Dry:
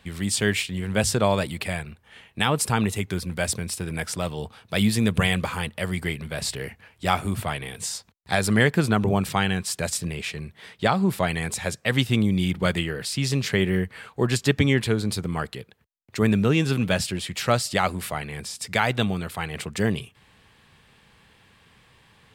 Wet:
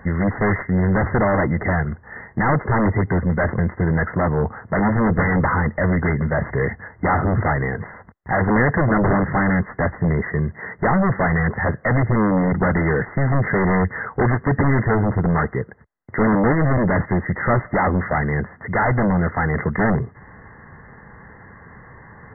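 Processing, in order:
in parallel at −10.5 dB: sine wavefolder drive 20 dB, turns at −5.5 dBFS
on the sum: linear-phase brick-wall low-pass 2,100 Hz

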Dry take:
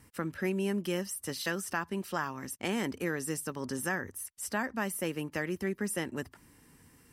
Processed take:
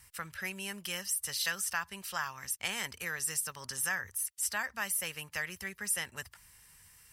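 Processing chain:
guitar amp tone stack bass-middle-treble 10-0-10
level +6.5 dB

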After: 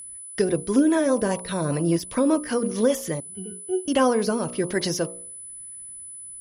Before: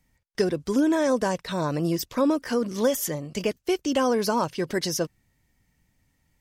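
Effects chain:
hum removal 59.86 Hz, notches 22
rotating-speaker cabinet horn 5 Hz, later 1.1 Hz, at 0:03.19
0:03.20–0:03.88: resonances in every octave F#, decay 0.21 s
steady tone 10,000 Hz −33 dBFS
high-shelf EQ 7,100 Hz −12 dB
level +4.5 dB

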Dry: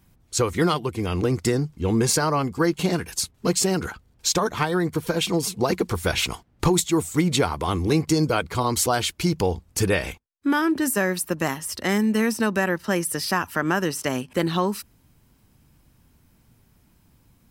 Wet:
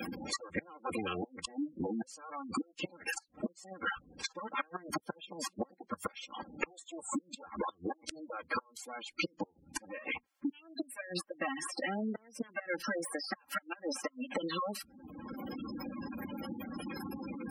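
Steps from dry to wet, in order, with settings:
lower of the sound and its delayed copy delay 3.7 ms
high-pass filter 420 Hz 6 dB per octave
notch filter 3,800 Hz, Q 28
gate with flip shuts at −18 dBFS, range −36 dB
high-shelf EQ 7,300 Hz −5 dB
downward compressor 4 to 1, threshold −43 dBFS, peak gain reduction 16 dB
gate on every frequency bin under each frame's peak −10 dB strong
multiband upward and downward compressor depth 100%
level +10 dB

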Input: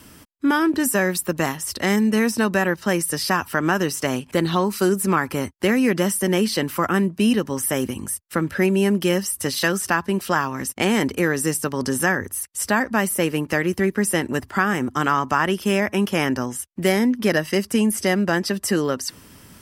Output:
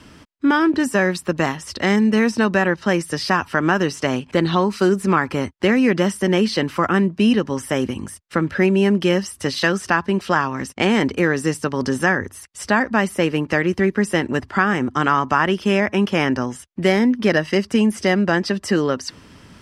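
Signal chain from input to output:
low-pass filter 5,000 Hz 12 dB per octave
level +2.5 dB

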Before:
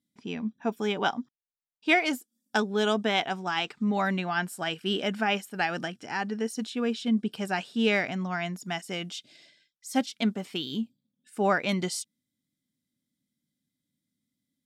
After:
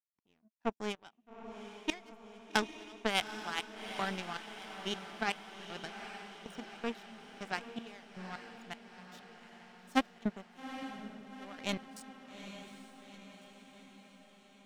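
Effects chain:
gate pattern "x..xx..x." 79 BPM −12 dB
power curve on the samples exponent 2
feedback delay with all-pass diffusion 834 ms, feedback 60%, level −9.5 dB
level +2.5 dB

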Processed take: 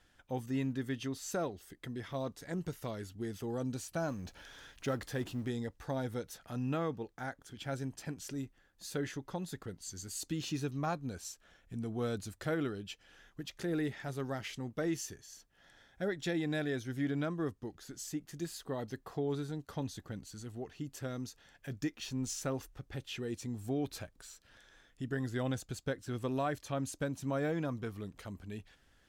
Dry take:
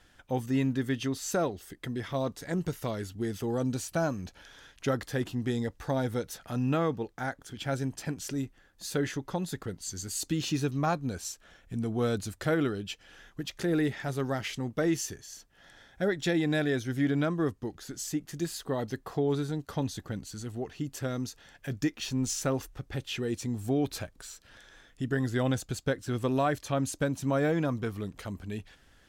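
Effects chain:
0:04.08–0:05.48: mu-law and A-law mismatch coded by mu
level −7 dB

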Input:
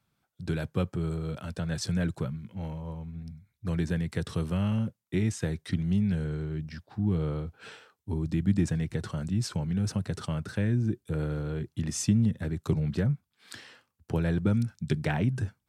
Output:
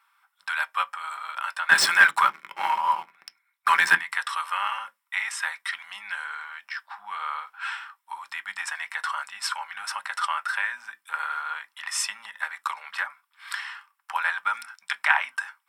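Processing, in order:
elliptic high-pass filter 940 Hz, stop band 60 dB
0:01.69–0:03.95: leveller curve on the samples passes 3
convolution reverb RT60 0.15 s, pre-delay 3 ms, DRR 8 dB
level +9 dB

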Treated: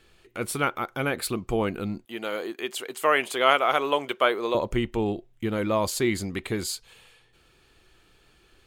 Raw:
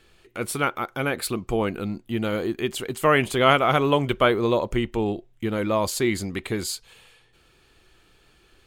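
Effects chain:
0:02.05–0:04.55: high-pass filter 450 Hz 12 dB per octave
level −1.5 dB

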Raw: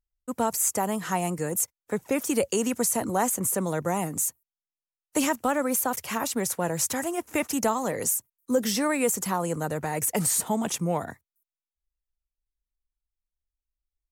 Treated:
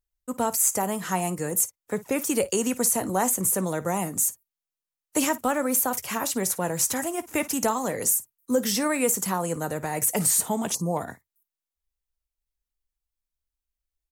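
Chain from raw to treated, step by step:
high-shelf EQ 6,600 Hz +4.5 dB
on a send: ambience of single reflections 16 ms −15 dB, 54 ms −18 dB
on the sum: gain on a spectral selection 0:10.74–0:10.97, 1,200–4,000 Hz −28 dB

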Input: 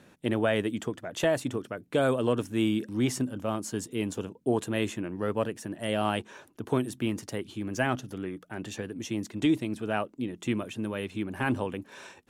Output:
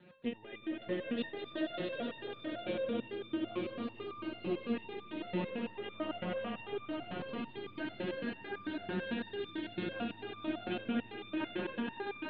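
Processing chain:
Butterworth low-pass 4,100 Hz 96 dB per octave
low-shelf EQ 70 Hz −10.5 dB
downward compressor, threshold −35 dBFS, peak gain reduction 13.5 dB
rotating-speaker cabinet horn 7 Hz
echo that builds up and dies away 94 ms, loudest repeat 5, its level −4 dB
step-sequenced resonator 9 Hz 180–1,200 Hz
level +13 dB

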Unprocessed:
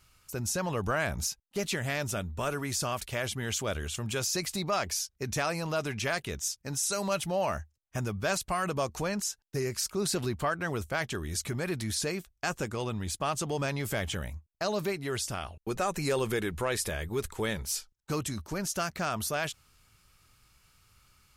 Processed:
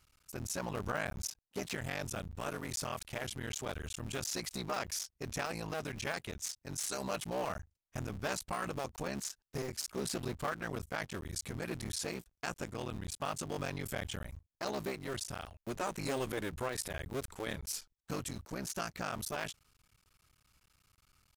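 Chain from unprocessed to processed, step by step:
sub-harmonics by changed cycles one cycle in 3, muted
level −5.5 dB

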